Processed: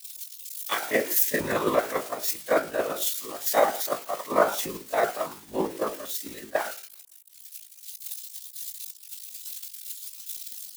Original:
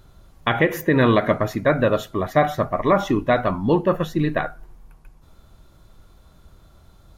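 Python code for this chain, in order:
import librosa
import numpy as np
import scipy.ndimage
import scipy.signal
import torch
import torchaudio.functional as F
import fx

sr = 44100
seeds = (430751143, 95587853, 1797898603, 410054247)

y = x + 0.5 * 10.0 ** (-15.0 / 20.0) * np.diff(np.sign(x), prepend=np.sign(x[:1]))
y = scipy.signal.sosfilt(scipy.signal.butter(4, 320.0, 'highpass', fs=sr, output='sos'), y)
y = fx.hum_notches(y, sr, base_hz=60, count=9)
y = fx.whisperise(y, sr, seeds[0])
y = fx.stretch_grains(y, sr, factor=1.5, grain_ms=112.0)
y = fx.band_widen(y, sr, depth_pct=100)
y = F.gain(torch.from_numpy(y), -7.5).numpy()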